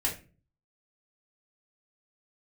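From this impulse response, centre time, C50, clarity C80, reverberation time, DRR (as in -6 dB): 21 ms, 9.0 dB, 15.5 dB, 0.35 s, -3.5 dB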